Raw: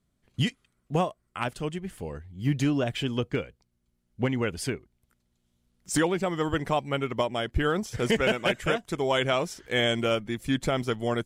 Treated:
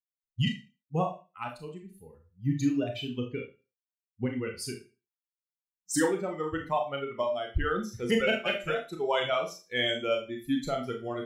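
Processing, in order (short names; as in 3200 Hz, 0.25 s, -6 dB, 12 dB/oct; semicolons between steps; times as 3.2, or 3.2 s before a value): per-bin expansion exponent 2; Schroeder reverb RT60 0.31 s, combs from 25 ms, DRR 2 dB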